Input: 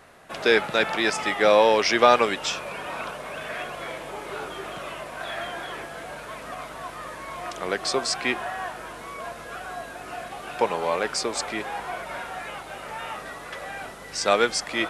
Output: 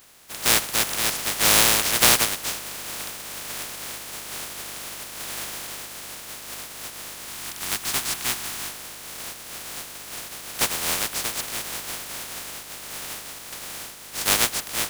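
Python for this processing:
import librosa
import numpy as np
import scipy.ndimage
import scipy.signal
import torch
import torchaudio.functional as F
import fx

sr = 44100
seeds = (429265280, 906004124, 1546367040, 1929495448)

y = fx.spec_flatten(x, sr, power=0.1)
y = fx.peak_eq(y, sr, hz=530.0, db=-8.0, octaves=0.49, at=(7.28, 8.69))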